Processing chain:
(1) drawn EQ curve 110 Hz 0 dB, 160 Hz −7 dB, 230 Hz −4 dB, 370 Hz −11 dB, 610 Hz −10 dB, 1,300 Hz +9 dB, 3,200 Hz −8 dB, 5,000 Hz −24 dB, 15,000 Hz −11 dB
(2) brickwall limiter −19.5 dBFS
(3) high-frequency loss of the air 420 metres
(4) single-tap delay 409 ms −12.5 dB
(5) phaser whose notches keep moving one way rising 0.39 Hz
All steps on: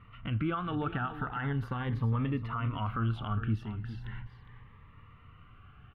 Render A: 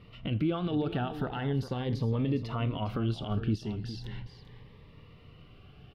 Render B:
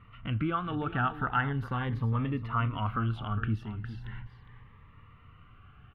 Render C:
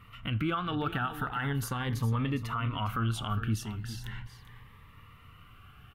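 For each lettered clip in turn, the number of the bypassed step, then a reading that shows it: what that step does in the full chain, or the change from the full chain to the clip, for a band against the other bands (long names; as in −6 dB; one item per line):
1, change in integrated loudness +1.5 LU
2, change in crest factor +4.0 dB
3, 4 kHz band +7.5 dB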